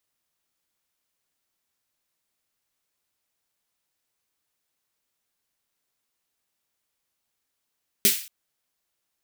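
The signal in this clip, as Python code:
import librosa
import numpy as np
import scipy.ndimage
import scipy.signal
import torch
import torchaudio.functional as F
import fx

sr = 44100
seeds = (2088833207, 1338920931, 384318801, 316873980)

y = fx.drum_snare(sr, seeds[0], length_s=0.23, hz=220.0, second_hz=400.0, noise_db=9.0, noise_from_hz=2000.0, decay_s=0.16, noise_decay_s=0.43)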